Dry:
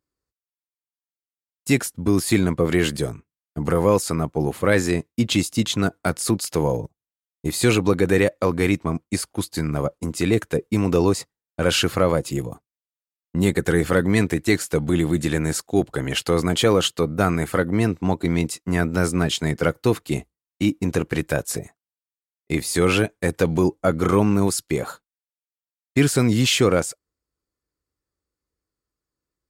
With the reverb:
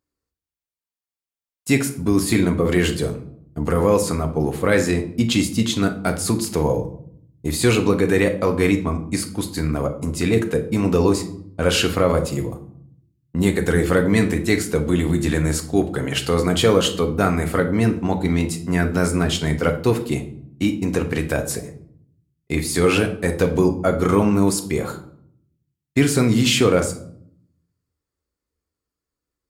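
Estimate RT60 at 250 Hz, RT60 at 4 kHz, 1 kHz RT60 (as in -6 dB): 0.95 s, 0.40 s, 0.60 s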